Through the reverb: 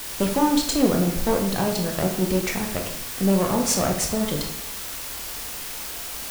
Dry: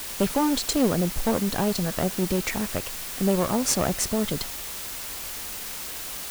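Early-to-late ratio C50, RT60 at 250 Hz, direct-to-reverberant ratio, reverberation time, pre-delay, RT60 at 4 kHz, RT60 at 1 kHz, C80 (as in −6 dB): 7.0 dB, 0.85 s, 2.0 dB, 0.70 s, 15 ms, 0.50 s, 0.65 s, 9.5 dB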